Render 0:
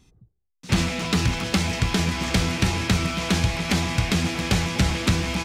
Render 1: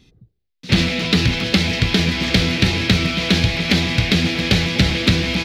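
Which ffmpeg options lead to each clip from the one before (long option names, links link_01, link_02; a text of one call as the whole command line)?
ffmpeg -i in.wav -af "equalizer=frequency=125:width_type=o:width=1:gain=3,equalizer=frequency=250:width_type=o:width=1:gain=4,equalizer=frequency=500:width_type=o:width=1:gain=5,equalizer=frequency=1000:width_type=o:width=1:gain=-6,equalizer=frequency=2000:width_type=o:width=1:gain=5,equalizer=frequency=4000:width_type=o:width=1:gain=10,equalizer=frequency=8000:width_type=o:width=1:gain=-8,volume=1.5dB" out.wav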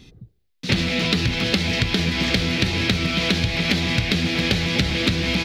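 ffmpeg -i in.wav -af "acompressor=threshold=-24dB:ratio=6,volume=6dB" out.wav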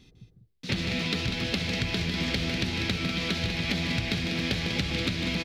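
ffmpeg -i in.wav -af "aecho=1:1:151.6|195.3:0.398|0.398,volume=-9dB" out.wav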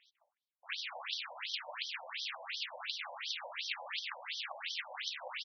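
ffmpeg -i in.wav -af "aeval=exprs='abs(val(0))':channel_layout=same,afftfilt=real='re*between(b*sr/1024,700*pow(4400/700,0.5+0.5*sin(2*PI*2.8*pts/sr))/1.41,700*pow(4400/700,0.5+0.5*sin(2*PI*2.8*pts/sr))*1.41)':imag='im*between(b*sr/1024,700*pow(4400/700,0.5+0.5*sin(2*PI*2.8*pts/sr))/1.41,700*pow(4400/700,0.5+0.5*sin(2*PI*2.8*pts/sr))*1.41)':win_size=1024:overlap=0.75,volume=-1dB" out.wav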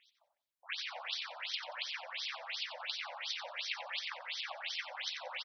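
ffmpeg -i in.wav -af "aecho=1:1:90|180|270:0.299|0.0597|0.0119" out.wav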